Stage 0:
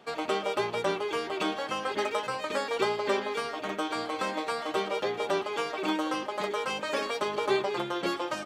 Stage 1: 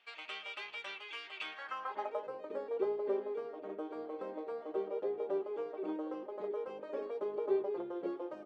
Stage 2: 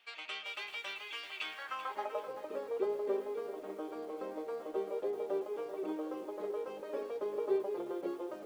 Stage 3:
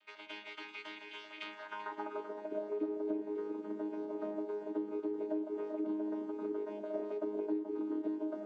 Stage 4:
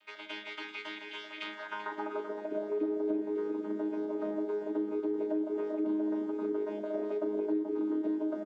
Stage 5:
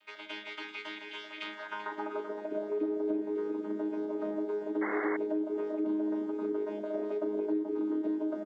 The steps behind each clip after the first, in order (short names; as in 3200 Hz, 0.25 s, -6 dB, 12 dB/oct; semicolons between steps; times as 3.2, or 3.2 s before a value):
band-pass sweep 2600 Hz -> 420 Hz, 1.41–2.35; gain -3.5 dB
HPF 95 Hz 12 dB/oct; high shelf 4100 Hz +7.5 dB; lo-fi delay 0.387 s, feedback 35%, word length 9-bit, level -11 dB
chord vocoder bare fifth, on G#3; compressor 5:1, threshold -37 dBFS, peak gain reduction 11 dB; gain +4 dB
in parallel at -2 dB: limiter -32 dBFS, peak gain reduction 7 dB; on the sum: doubler 38 ms -10.5 dB
painted sound noise, 4.81–5.17, 290–2200 Hz -36 dBFS